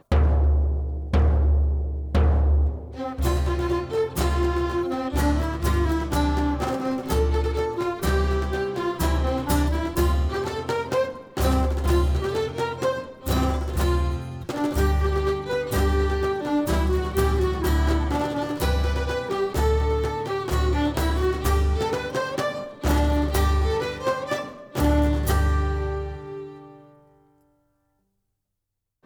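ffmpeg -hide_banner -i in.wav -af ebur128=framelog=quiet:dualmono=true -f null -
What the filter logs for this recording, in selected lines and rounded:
Integrated loudness:
  I:         -21.1 LUFS
  Threshold: -31.4 LUFS
Loudness range:
  LRA:         1.7 LU
  Threshold: -41.5 LUFS
  LRA low:   -22.2 LUFS
  LRA high:  -20.5 LUFS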